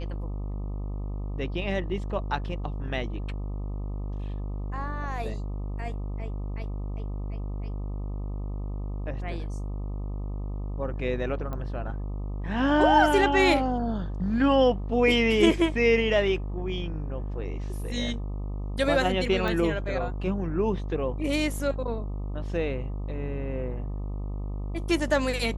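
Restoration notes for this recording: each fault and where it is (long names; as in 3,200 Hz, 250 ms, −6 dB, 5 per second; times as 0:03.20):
mains buzz 50 Hz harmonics 25 −32 dBFS
0:11.53: click −23 dBFS
0:19.48: click −18 dBFS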